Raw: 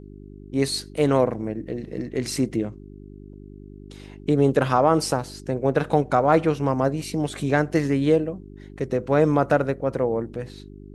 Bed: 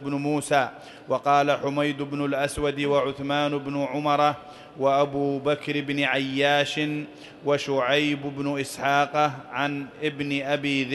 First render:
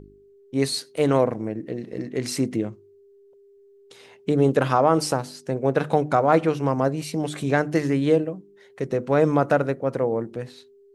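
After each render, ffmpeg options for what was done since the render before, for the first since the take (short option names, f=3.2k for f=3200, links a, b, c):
-af "bandreject=f=50:t=h:w=4,bandreject=f=100:t=h:w=4,bandreject=f=150:t=h:w=4,bandreject=f=200:t=h:w=4,bandreject=f=250:t=h:w=4,bandreject=f=300:t=h:w=4,bandreject=f=350:t=h:w=4"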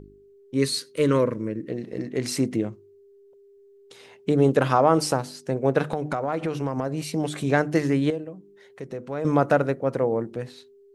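-filter_complex "[0:a]asettb=1/sr,asplit=3[a][b][c];[a]atrim=end=0.554[d];[b]atrim=start=0.55:end=1.7,asetpts=PTS-STARTPTS,afade=t=in:d=0.004:c=qsin,afade=t=out:st=1.146:d=0.004:c=qsin,asuperstop=centerf=750:order=4:qfactor=1.9[e];[c]atrim=start=1.696[f];[d][e]acrossfade=d=0.004:c1=hsin:c2=qsin[g];[g][f]acrossfade=d=0.004:c1=qsin:c2=hsin,asettb=1/sr,asplit=3[h][i][j];[h]atrim=end=5.924[k];[i]atrim=start=5.92:end=7.04,asetpts=PTS-STARTPTS,afade=t=in:d=0.004:c=qsin,afade=t=out:st=1.116:d=0.004:c=qsin,acompressor=threshold=-22dB:ratio=6:attack=3.2:release=140:knee=1:detection=peak[l];[j]atrim=start=7.036[m];[k][l]acrossfade=d=0.004:c1=hsin:c2=qsin[n];[n][m]acrossfade=d=0.004:c1=qsin:c2=hsin,asettb=1/sr,asplit=3[o][p][q];[o]atrim=end=8.104[r];[p]atrim=start=8.1:end=9.25,asetpts=PTS-STARTPTS,afade=t=in:d=0.004:c=qsin,afade=t=out:st=1.146:d=0.004:c=qsin,acompressor=threshold=-46dB:ratio=1.5:attack=3.2:release=140:knee=1:detection=peak[s];[q]atrim=start=9.246[t];[r][s]acrossfade=d=0.004:c1=hsin:c2=qsin[u];[u][t]acrossfade=d=0.004:c1=qsin:c2=hsin"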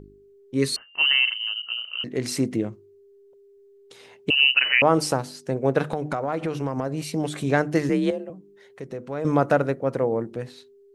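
-filter_complex "[0:a]asettb=1/sr,asplit=3[a][b][c];[a]atrim=end=0.764[d];[b]atrim=start=0.76:end=2.04,asetpts=PTS-STARTPTS,afade=t=in:d=0.004:c=qsin,afade=t=out:st=1.276:d=0.004:c=qsin,lowpass=f=2.7k:t=q:w=0.5098,lowpass=f=2.7k:t=q:w=0.6013,lowpass=f=2.7k:t=q:w=0.9,lowpass=f=2.7k:t=q:w=2.563,afreqshift=-3200[e];[c]atrim=start=2.036[f];[d][e]acrossfade=d=0.004:c1=hsin:c2=qsin[g];[g][f]acrossfade=d=0.004:c1=qsin:c2=hsin,asettb=1/sr,asplit=3[h][i][j];[h]atrim=end=4.304[k];[i]atrim=start=4.3:end=4.82,asetpts=PTS-STARTPTS,afade=t=in:d=0.004:c=qsin,afade=t=out:st=0.516:d=0.004:c=qsin,lowpass=f=2.6k:t=q:w=0.5098,lowpass=f=2.6k:t=q:w=0.6013,lowpass=f=2.6k:t=q:w=0.9,lowpass=f=2.6k:t=q:w=2.563,afreqshift=-3100[l];[j]atrim=start=4.816[m];[k][l]acrossfade=d=0.004:c1=hsin:c2=qsin[n];[n][m]acrossfade=d=0.004:c1=qsin:c2=hsin,asettb=1/sr,asplit=3[o][p][q];[o]atrim=end=7.894[r];[p]atrim=start=7.89:end=8.3,asetpts=PTS-STARTPTS,afade=t=in:d=0.004:c=qsin,afade=t=out:st=0.406:d=0.004:c=qsin,afreqshift=44[s];[q]atrim=start=8.296[t];[r][s]acrossfade=d=0.004:c1=hsin:c2=qsin[u];[u][t]acrossfade=d=0.004:c1=qsin:c2=hsin"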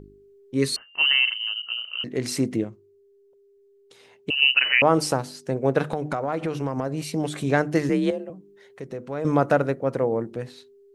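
-filter_complex "[0:a]asplit=3[a][b][c];[a]atrim=end=2.642[d];[b]atrim=start=2.638:end=4.422,asetpts=PTS-STARTPTS,volume=-4.5dB[e];[c]atrim=start=4.418[f];[d][e]acrossfade=d=0.004:c1=hsin:c2=hsin[g];[g][f]acrossfade=d=0.004:c1=hsin:c2=hsin"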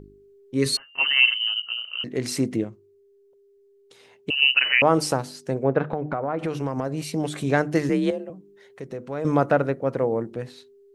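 -filter_complex "[0:a]asettb=1/sr,asplit=3[a][b][c];[a]atrim=end=0.654[d];[b]atrim=start=0.65:end=1.6,asetpts=PTS-STARTPTS,afade=t=in:d=0.004:c=qsin,afade=t=out:st=0.946:d=0.004:c=qsin,aecho=1:1:7.4:0.86,atrim=end_sample=41895[e];[c]atrim=start=1.596[f];[d][e]acrossfade=d=0.004:c1=hsin:c2=qsin[g];[g][f]acrossfade=d=0.004:c1=qsin:c2=hsin,asettb=1/sr,asplit=3[h][i][j];[h]atrim=end=5.634[k];[i]atrim=start=5.63:end=6.39,asetpts=PTS-STARTPTS,afade=t=in:d=0.004:c=qsin,afade=t=out:st=0.756:d=0.004:c=qsin,lowpass=1.9k[l];[j]atrim=start=6.386[m];[k][l]acrossfade=d=0.004:c1=hsin:c2=qsin[n];[n][m]acrossfade=d=0.004:c1=qsin:c2=hsin,asettb=1/sr,asplit=3[o][p][q];[o]atrim=end=9.474[r];[p]atrim=start=9.47:end=10.45,asetpts=PTS-STARTPTS,afade=t=in:d=0.004:c=qsin,afade=t=out:st=0.976:d=0.004:c=qsin,acrossover=split=4100[s][t];[t]acompressor=threshold=-59dB:ratio=4:attack=1:release=60[u];[s][u]amix=inputs=2:normalize=0[v];[q]atrim=start=10.446[w];[r][v]acrossfade=d=0.004:c1=hsin:c2=qsin[x];[x][w]acrossfade=d=0.004:c1=qsin:c2=hsin"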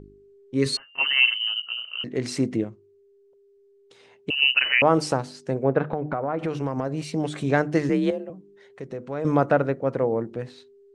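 -af "lowpass=f=9.4k:w=0.5412,lowpass=f=9.4k:w=1.3066,highshelf=f=4.9k:g=-5.5"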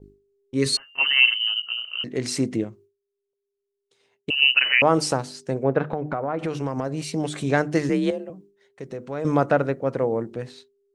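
-af "agate=range=-33dB:threshold=-44dB:ratio=3:detection=peak,highshelf=f=4.6k:g=8.5"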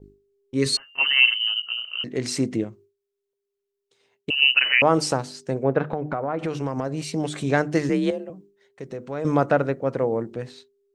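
-af "equalizer=f=10k:w=8:g=-8"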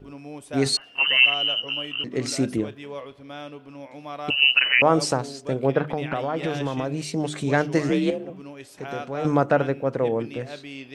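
-filter_complex "[1:a]volume=-13.5dB[a];[0:a][a]amix=inputs=2:normalize=0"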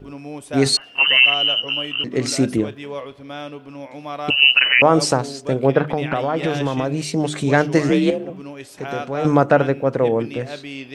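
-af "volume=5.5dB,alimiter=limit=-2dB:level=0:latency=1"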